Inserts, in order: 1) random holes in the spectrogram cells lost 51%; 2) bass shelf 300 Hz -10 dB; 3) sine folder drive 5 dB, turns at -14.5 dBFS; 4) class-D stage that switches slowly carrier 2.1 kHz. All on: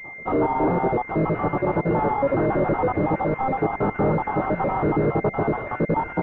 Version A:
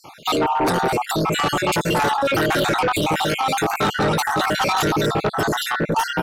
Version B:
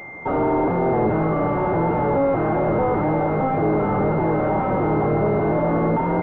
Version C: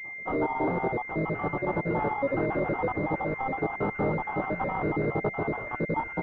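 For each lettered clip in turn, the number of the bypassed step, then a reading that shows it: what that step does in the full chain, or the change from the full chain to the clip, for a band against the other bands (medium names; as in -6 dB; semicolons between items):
4, 2 kHz band +9.0 dB; 1, 2 kHz band -3.0 dB; 3, crest factor change +4.0 dB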